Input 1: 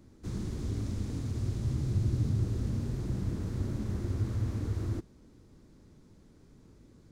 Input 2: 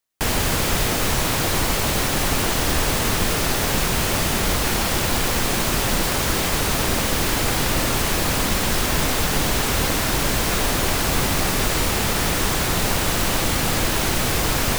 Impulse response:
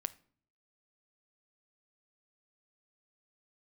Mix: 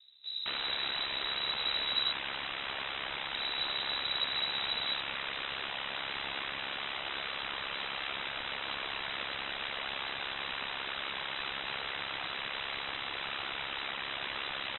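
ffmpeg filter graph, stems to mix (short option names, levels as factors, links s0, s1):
-filter_complex "[0:a]volume=0.841,asplit=3[s0][s1][s2];[s0]atrim=end=2.12,asetpts=PTS-STARTPTS,afade=t=out:st=2.116:d=0.004:c=hsin[s3];[s1]atrim=start=2.12:end=3.34,asetpts=PTS-STARTPTS,volume=0[s4];[s2]atrim=start=3.34,asetpts=PTS-STARTPTS,afade=t=in:d=0.004:c=hsin[s5];[s3][s4][s5]concat=n=3:v=0:a=1[s6];[1:a]aeval=exprs='(mod(13.3*val(0)+1,2)-1)/13.3':c=same,adelay=250,volume=1[s7];[s6][s7]amix=inputs=2:normalize=0,aeval=exprs='val(0)*sin(2*PI*34*n/s)':c=same,lowpass=f=3400:t=q:w=0.5098,lowpass=f=3400:t=q:w=0.6013,lowpass=f=3400:t=q:w=0.9,lowpass=f=3400:t=q:w=2.563,afreqshift=-4000"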